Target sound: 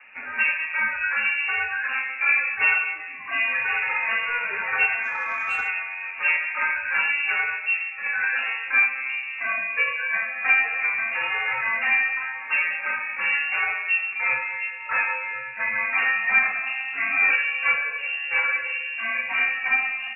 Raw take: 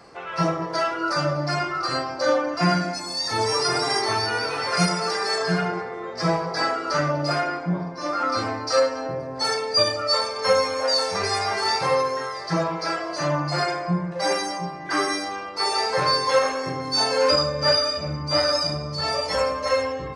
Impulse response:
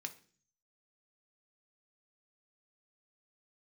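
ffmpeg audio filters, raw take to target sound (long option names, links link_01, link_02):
-filter_complex "[0:a]lowpass=frequency=2500:width_type=q:width=0.5098,lowpass=frequency=2500:width_type=q:width=0.6013,lowpass=frequency=2500:width_type=q:width=0.9,lowpass=frequency=2500:width_type=q:width=2.563,afreqshift=-2900,adynamicequalizer=threshold=0.00251:dfrequency=270:dqfactor=1.7:tfrequency=270:tqfactor=1.7:attack=5:release=100:ratio=0.375:range=2.5:mode=cutabove:tftype=bell,asettb=1/sr,asplit=3[link_01][link_02][link_03];[link_01]atrim=end=5.034[link_04];[link_02]atrim=start=5.03:end=5.68,asetpts=PTS-STARTPTS,afade=type=in:duration=0.004:curve=qsin,afade=type=out:start_time=0.646:duration=0.004:curve=qsin,asplit=2[link_05][link_06];[link_06]highpass=frequency=720:poles=1,volume=8dB,asoftclip=type=tanh:threshold=-11.5dB[link_07];[link_05][link_07]amix=inputs=2:normalize=0,lowpass=frequency=1300:poles=1,volume=-6dB[link_08];[link_03]atrim=start=5.676[link_09];[link_04][link_08]acrossfade=duration=0.004:curve1=hsin:curve2=qsin[link_10];[link_10][link_09]acrossfade=duration=0.004:curve1=qsin:curve2=hsin"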